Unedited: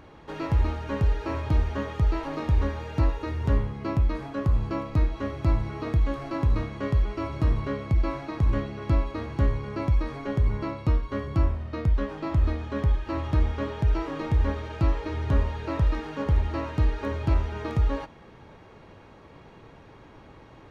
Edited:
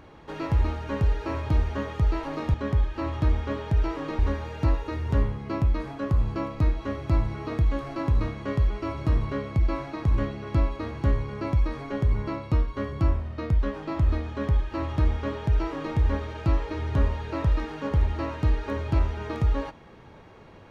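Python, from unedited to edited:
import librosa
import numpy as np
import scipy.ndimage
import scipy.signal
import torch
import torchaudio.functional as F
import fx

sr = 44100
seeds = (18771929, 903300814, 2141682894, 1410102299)

y = fx.edit(x, sr, fx.duplicate(start_s=12.65, length_s=1.65, to_s=2.54), tone=tone)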